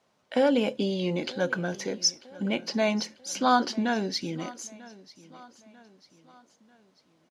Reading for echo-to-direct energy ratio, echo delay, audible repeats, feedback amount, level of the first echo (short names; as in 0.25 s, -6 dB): -19.5 dB, 0.943 s, 3, 46%, -20.5 dB